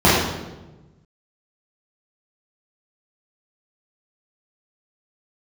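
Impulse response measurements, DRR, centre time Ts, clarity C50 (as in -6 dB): -9.5 dB, 77 ms, -0.5 dB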